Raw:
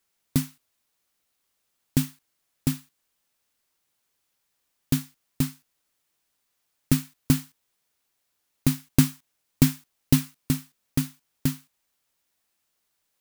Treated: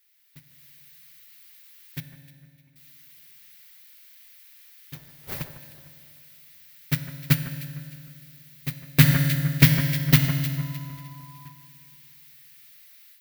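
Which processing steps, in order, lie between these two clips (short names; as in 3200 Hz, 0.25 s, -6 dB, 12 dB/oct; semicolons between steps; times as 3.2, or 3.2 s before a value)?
switching spikes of -15.5 dBFS; 4.93–5.41 wind noise 490 Hz -17 dBFS; notches 60/120/180/240 Hz; gate -12 dBFS, range -55 dB; graphic EQ 125/250/2000/4000/8000 Hz +9/-10/+12/+4/-10 dB; AGC gain up to 14 dB; 2–2.76 vowel filter u; reverb RT60 2.1 s, pre-delay 3 ms, DRR 8 dB; 10.57–11.51 whine 1000 Hz -58 dBFS; echo with dull and thin repeats by turns 0.152 s, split 1900 Hz, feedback 55%, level -11.5 dB; maximiser +10 dB; gain -1 dB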